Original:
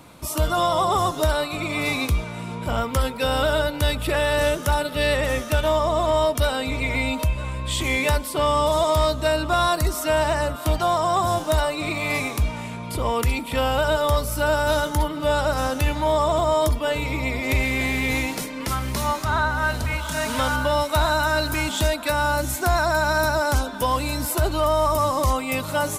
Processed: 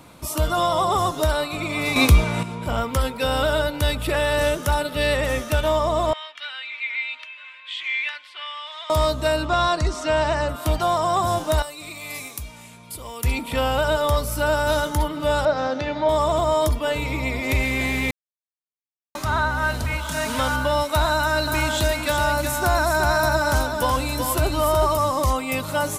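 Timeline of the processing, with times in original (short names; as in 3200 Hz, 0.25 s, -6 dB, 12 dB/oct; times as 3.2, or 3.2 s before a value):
1.96–2.43 gain +8.5 dB
6.13–8.9 Butterworth band-pass 2400 Hz, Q 1.3
9.45–10.49 LPF 7100 Hz 24 dB/oct
11.62–13.24 pre-emphasis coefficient 0.8
15.45–16.09 speaker cabinet 160–4800 Hz, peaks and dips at 610 Hz +5 dB, 1100 Hz -4 dB, 2800 Hz -7 dB
18.11–19.15 mute
21.1–24.97 echo 0.373 s -5.5 dB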